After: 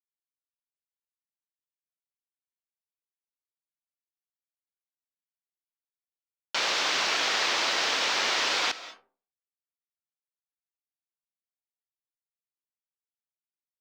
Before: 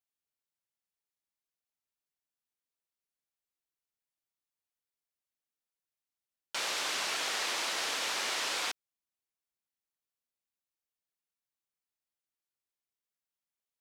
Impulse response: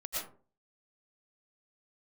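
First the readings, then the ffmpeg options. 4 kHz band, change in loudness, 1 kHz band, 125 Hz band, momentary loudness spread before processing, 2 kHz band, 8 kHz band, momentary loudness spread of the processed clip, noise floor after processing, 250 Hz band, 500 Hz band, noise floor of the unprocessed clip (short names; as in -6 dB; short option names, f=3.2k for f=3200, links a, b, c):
+7.5 dB, +7.0 dB, +7.5 dB, n/a, 5 LU, +7.5 dB, +3.0 dB, 5 LU, under -85 dBFS, +8.0 dB, +7.5 dB, under -85 dBFS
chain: -filter_complex "[0:a]lowpass=f=6.1k:w=0.5412,lowpass=f=6.1k:w=1.3066,aeval=exprs='sgn(val(0))*max(abs(val(0))-0.00112,0)':c=same,asplit=2[a][b];[1:a]atrim=start_sample=2205,adelay=75[c];[b][c]afir=irnorm=-1:irlink=0,volume=-17dB[d];[a][d]amix=inputs=2:normalize=0,volume=8dB"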